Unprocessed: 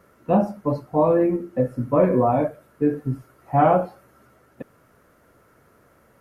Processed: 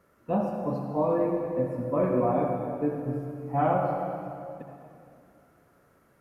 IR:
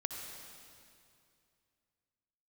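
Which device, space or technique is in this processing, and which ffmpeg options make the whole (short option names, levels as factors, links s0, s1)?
stairwell: -filter_complex "[1:a]atrim=start_sample=2205[s0];[0:a][s0]afir=irnorm=-1:irlink=0,volume=0.447"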